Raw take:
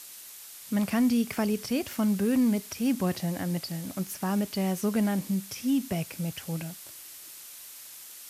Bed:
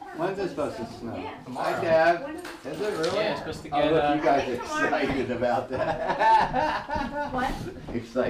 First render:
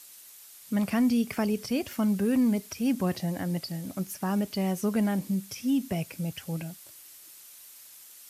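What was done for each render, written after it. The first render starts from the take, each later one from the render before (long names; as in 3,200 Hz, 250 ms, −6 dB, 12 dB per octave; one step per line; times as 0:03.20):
broadband denoise 6 dB, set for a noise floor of −46 dBFS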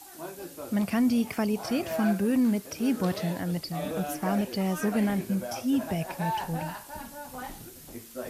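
mix in bed −12 dB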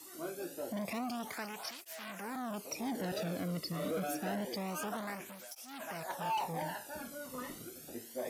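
gain into a clipping stage and back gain 30.5 dB
through-zero flanger with one copy inverted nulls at 0.27 Hz, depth 1.3 ms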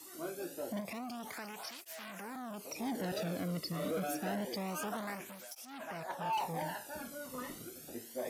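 0:00.80–0:02.76: downward compressor 2 to 1, threshold −41 dBFS
0:05.65–0:06.33: high-shelf EQ 4,700 Hz −9.5 dB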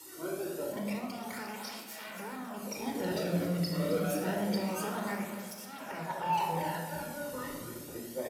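repeating echo 266 ms, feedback 45%, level −13 dB
rectangular room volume 3,700 cubic metres, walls furnished, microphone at 4.5 metres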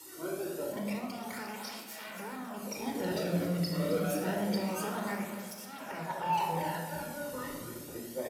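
no processing that can be heard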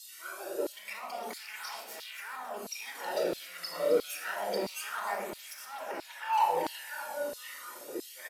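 auto-filter high-pass saw down 1.5 Hz 330–4,300 Hz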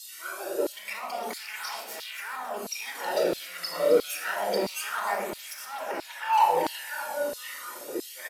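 level +5.5 dB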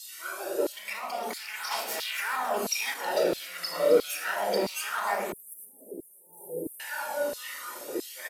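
0:01.71–0:02.94: clip gain +5.5 dB
0:05.32–0:06.80: Chebyshev band-stop filter 440–9,400 Hz, order 4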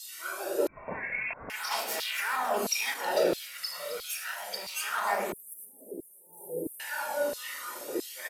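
0:00.67–0:01.50: voice inversion scrambler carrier 2,900 Hz
0:03.35–0:04.68: guitar amp tone stack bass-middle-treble 10-0-10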